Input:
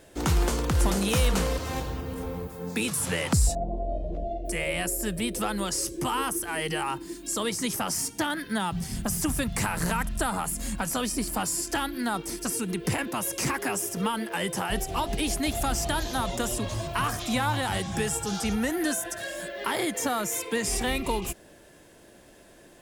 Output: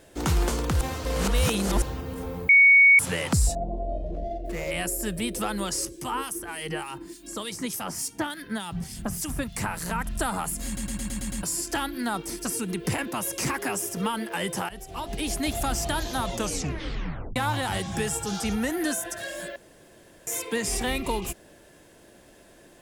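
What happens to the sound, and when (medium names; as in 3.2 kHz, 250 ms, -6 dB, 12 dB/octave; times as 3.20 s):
0.81–1.82 s: reverse
2.49–2.99 s: bleep 2.23 kHz -11.5 dBFS
4.06–4.71 s: median filter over 15 samples
5.85–10.06 s: harmonic tremolo 3.4 Hz, crossover 2.4 kHz
10.66 s: stutter in place 0.11 s, 7 plays
14.69–15.40 s: fade in, from -17 dB
16.33 s: tape stop 1.03 s
19.56–20.27 s: room tone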